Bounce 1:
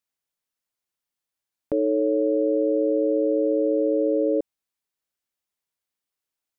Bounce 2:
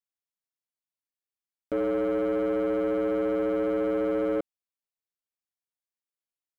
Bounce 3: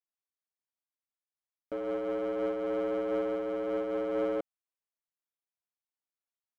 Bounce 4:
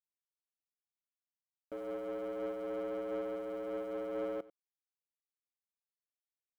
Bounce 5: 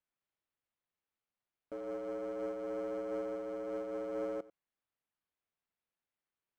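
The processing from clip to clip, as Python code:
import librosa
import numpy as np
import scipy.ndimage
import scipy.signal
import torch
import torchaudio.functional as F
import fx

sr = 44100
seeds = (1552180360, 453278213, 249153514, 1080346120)

y1 = fx.leveller(x, sr, passes=2)
y1 = y1 * librosa.db_to_amplitude(-8.0)
y2 = fx.peak_eq(y1, sr, hz=900.0, db=8.5, octaves=2.5)
y2 = np.clip(y2, -10.0 ** (-16.5 / 20.0), 10.0 ** (-16.5 / 20.0))
y2 = fx.am_noise(y2, sr, seeds[0], hz=5.7, depth_pct=55)
y2 = y2 * librosa.db_to_amplitude(-7.5)
y3 = np.where(np.abs(y2) >= 10.0 ** (-51.5 / 20.0), y2, 0.0)
y3 = y3 + 10.0 ** (-19.0 / 20.0) * np.pad(y3, (int(92 * sr / 1000.0), 0))[:len(y3)]
y3 = y3 * librosa.db_to_amplitude(-7.0)
y4 = np.interp(np.arange(len(y3)), np.arange(len(y3))[::6], y3[::6])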